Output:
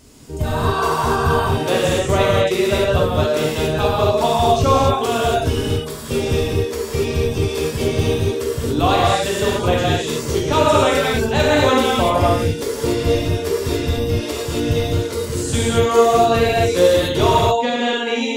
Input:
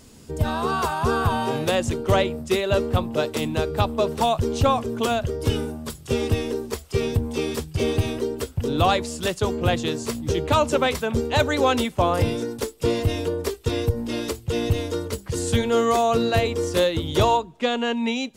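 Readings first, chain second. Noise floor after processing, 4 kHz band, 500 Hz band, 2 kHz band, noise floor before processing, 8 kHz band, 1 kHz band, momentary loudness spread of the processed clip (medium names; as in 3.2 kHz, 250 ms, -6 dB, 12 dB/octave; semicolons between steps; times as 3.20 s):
-27 dBFS, +6.0 dB, +6.5 dB, +6.0 dB, -45 dBFS, +6.0 dB, +6.0 dB, 7 LU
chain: reverb removal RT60 0.73 s; gated-style reverb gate 310 ms flat, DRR -7 dB; trim -1 dB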